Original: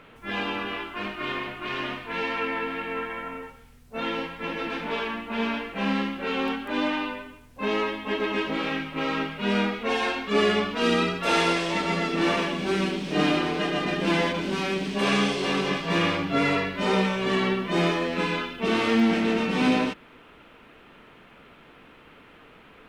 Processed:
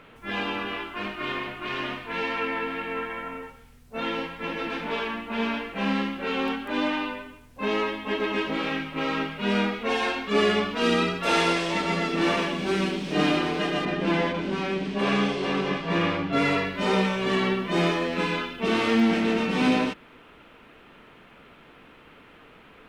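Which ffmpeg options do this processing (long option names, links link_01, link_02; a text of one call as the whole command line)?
ffmpeg -i in.wav -filter_complex "[0:a]asettb=1/sr,asplit=3[link_01][link_02][link_03];[link_01]atrim=end=13.854[link_04];[link_02]atrim=start=13.85:end=16.33,asetpts=PTS-STARTPTS,afade=type=in:duration=0.004:curve=qsin,afade=type=out:start_time=2.476:duration=0.004:curve=qsin,lowpass=frequency=2500:poles=1[link_05];[link_03]atrim=start=16.326[link_06];[link_04][link_05]acrossfade=duration=0.004:curve1=hsin:curve2=qsin[link_07];[link_07][link_06]acrossfade=duration=0.004:curve1=qsin:curve2=hsin" out.wav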